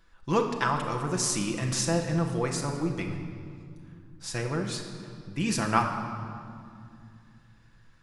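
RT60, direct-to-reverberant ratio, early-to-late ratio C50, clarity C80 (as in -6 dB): 2.3 s, 1.5 dB, 6.0 dB, 7.0 dB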